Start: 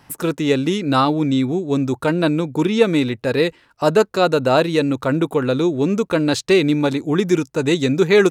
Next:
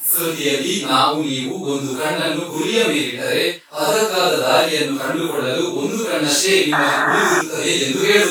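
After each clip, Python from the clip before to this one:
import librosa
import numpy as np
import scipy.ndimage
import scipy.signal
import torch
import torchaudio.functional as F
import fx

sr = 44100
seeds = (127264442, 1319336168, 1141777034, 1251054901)

y = fx.phase_scramble(x, sr, seeds[0], window_ms=200)
y = fx.spec_paint(y, sr, seeds[1], shape='noise', start_s=6.72, length_s=0.7, low_hz=580.0, high_hz=1900.0, level_db=-20.0)
y = fx.riaa(y, sr, side='recording')
y = y * 10.0 ** (2.0 / 20.0)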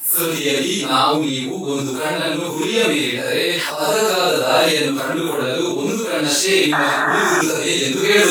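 y = fx.sustainer(x, sr, db_per_s=25.0)
y = y * 10.0 ** (-1.0 / 20.0)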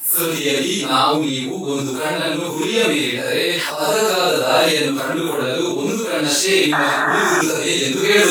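y = x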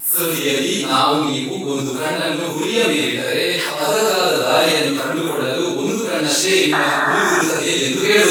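y = fx.vibrato(x, sr, rate_hz=1.5, depth_cents=25.0)
y = y + 10.0 ** (-10.0 / 20.0) * np.pad(y, (int(181 * sr / 1000.0), 0))[:len(y)]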